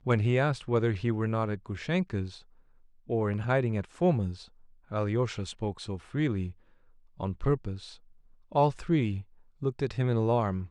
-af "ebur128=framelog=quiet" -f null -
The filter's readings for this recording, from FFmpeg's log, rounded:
Integrated loudness:
  I:         -30.0 LUFS
  Threshold: -40.6 LUFS
Loudness range:
  LRA:         3.5 LU
  Threshold: -51.7 LUFS
  LRA low:   -33.9 LUFS
  LRA high:  -30.4 LUFS